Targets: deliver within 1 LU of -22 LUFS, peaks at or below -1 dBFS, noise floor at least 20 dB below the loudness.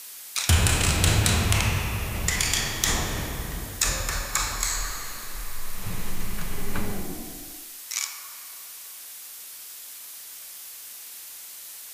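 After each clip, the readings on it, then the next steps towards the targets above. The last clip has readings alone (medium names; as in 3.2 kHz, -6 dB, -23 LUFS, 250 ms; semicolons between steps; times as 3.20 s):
noise floor -42 dBFS; noise floor target -46 dBFS; loudness -26.0 LUFS; peak level -3.0 dBFS; loudness target -22.0 LUFS
-> noise reduction 6 dB, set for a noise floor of -42 dBFS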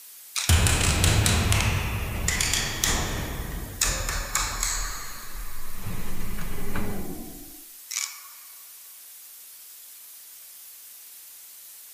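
noise floor -46 dBFS; loudness -26.0 LUFS; peak level -3.0 dBFS; loudness target -22.0 LUFS
-> trim +4 dB; peak limiter -1 dBFS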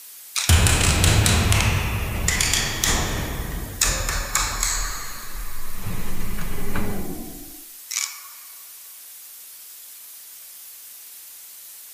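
loudness -22.0 LUFS; peak level -1.0 dBFS; noise floor -42 dBFS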